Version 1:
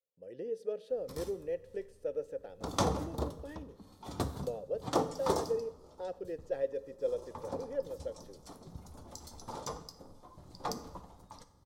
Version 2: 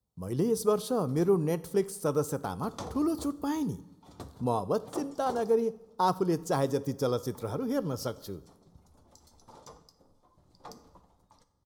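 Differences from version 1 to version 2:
speech: remove vowel filter e; background -10.0 dB

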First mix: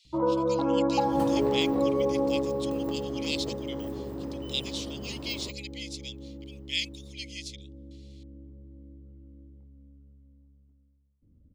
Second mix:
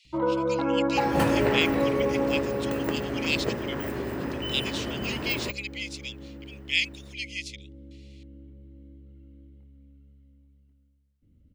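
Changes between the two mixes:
first sound: remove LPF 1900 Hz; second sound +10.0 dB; master: add band shelf 2000 Hz +9.5 dB 1.2 oct

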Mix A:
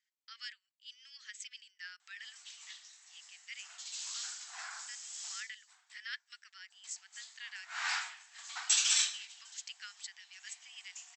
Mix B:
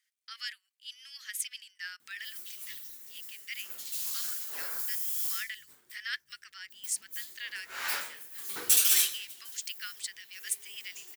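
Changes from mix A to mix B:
speech +6.5 dB; master: remove brick-wall FIR band-pass 670–8100 Hz

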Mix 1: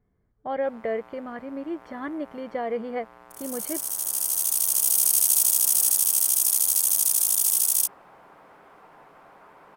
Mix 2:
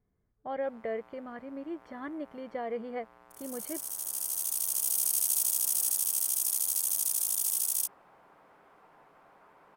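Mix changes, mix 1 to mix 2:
speech -6.5 dB; background -8.0 dB

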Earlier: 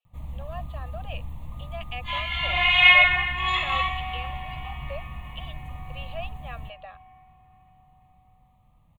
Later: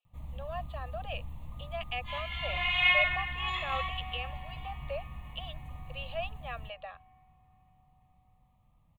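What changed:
first sound -6.0 dB; second sound -10.0 dB

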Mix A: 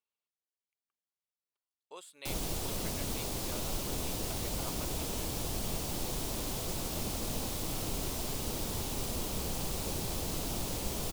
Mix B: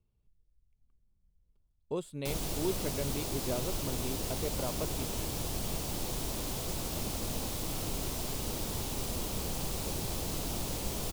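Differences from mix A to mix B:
speech: remove HPF 1100 Hz 12 dB/oct; master: remove notches 50/100/150 Hz

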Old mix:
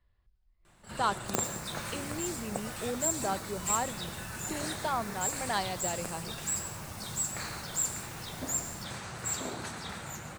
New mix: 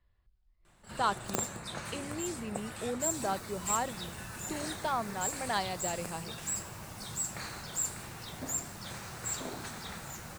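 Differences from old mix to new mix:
second sound: entry +1.60 s; reverb: off

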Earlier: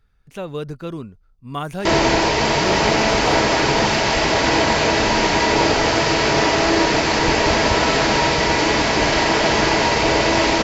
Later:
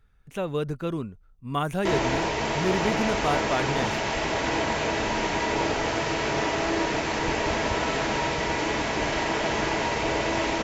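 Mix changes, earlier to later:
background -9.0 dB; master: add bell 4700 Hz -7 dB 0.45 oct

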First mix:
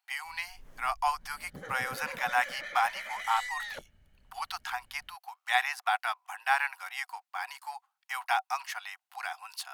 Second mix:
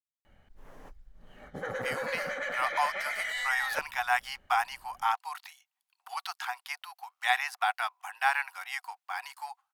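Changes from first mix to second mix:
speech: entry +1.75 s; background: add bell 820 Hz +10.5 dB 2.9 oct

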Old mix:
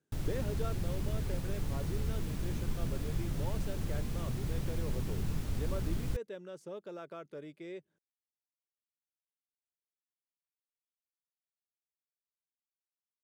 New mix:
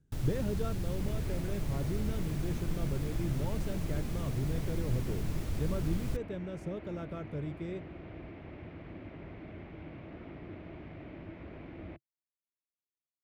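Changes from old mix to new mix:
speech: remove HPF 400 Hz 12 dB/oct; second sound: unmuted

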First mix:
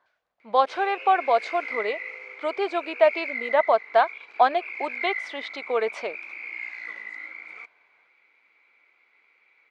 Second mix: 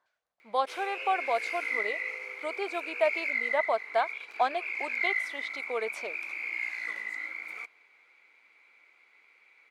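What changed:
speech -8.5 dB; master: remove air absorption 120 m

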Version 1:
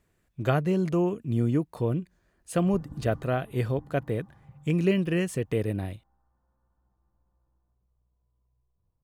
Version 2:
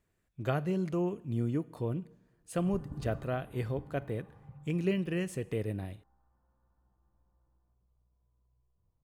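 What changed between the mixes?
speech -7.5 dB; reverb: on

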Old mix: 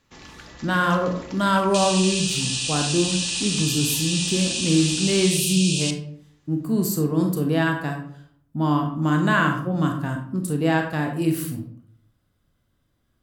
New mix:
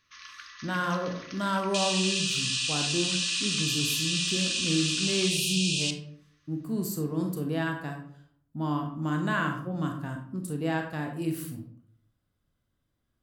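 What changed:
speech -8.5 dB; first sound: add brick-wall FIR band-pass 1000–6600 Hz; second sound: add air absorption 61 m

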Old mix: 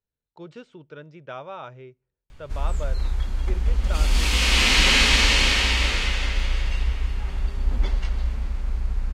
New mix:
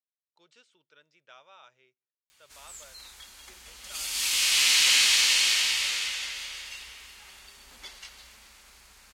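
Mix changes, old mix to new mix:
background +4.5 dB; master: add differentiator

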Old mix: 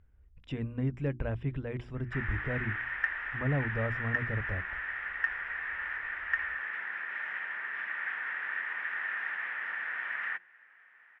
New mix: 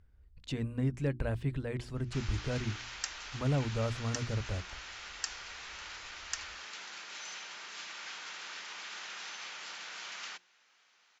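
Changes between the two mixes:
background: remove synth low-pass 1800 Hz, resonance Q 9.1; master: remove polynomial smoothing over 25 samples

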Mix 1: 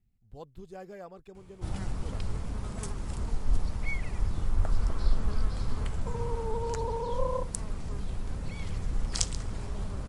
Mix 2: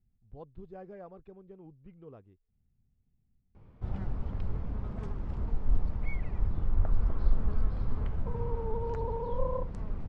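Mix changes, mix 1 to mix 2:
background: entry +2.20 s; master: add tape spacing loss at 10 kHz 40 dB

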